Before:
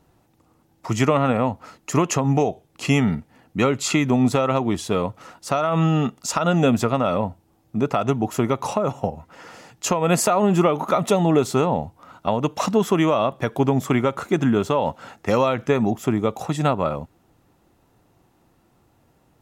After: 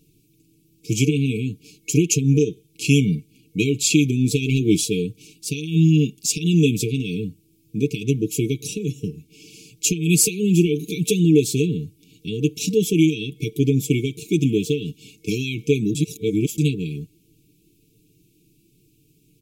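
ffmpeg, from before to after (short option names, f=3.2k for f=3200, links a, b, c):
-filter_complex "[0:a]asplit=3[a][b][c];[a]afade=t=out:st=4.41:d=0.02[d];[b]acontrast=25,afade=t=in:st=4.41:d=0.02,afade=t=out:st=4.84:d=0.02[e];[c]afade=t=in:st=4.84:d=0.02[f];[d][e][f]amix=inputs=3:normalize=0,asplit=3[g][h][i];[g]atrim=end=15.952[j];[h]atrim=start=15.948:end=16.582,asetpts=PTS-STARTPTS,areverse[k];[i]atrim=start=16.578[l];[j][k]acrossfade=d=0.004:c1=hsin:c2=hsin[m];[m][l]acrossfade=d=0.004:c1=hsin:c2=hsin,afftfilt=real='re*(1-between(b*sr/4096,460,2200))':imag='im*(1-between(b*sr/4096,460,2200))':win_size=4096:overlap=0.75,highshelf=f=6.4k:g=8.5,aecho=1:1:6.4:0.65"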